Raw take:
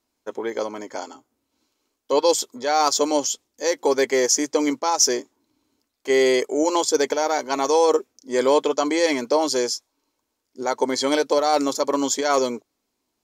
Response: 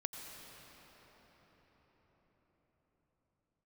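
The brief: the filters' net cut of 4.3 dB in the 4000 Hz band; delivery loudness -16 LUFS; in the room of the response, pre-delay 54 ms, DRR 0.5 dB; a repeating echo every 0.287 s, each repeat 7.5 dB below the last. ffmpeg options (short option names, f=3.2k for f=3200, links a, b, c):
-filter_complex "[0:a]equalizer=f=4k:t=o:g=-6,aecho=1:1:287|574|861|1148|1435:0.422|0.177|0.0744|0.0312|0.0131,asplit=2[a][b];[1:a]atrim=start_sample=2205,adelay=54[c];[b][c]afir=irnorm=-1:irlink=0,volume=0dB[d];[a][d]amix=inputs=2:normalize=0,volume=2.5dB"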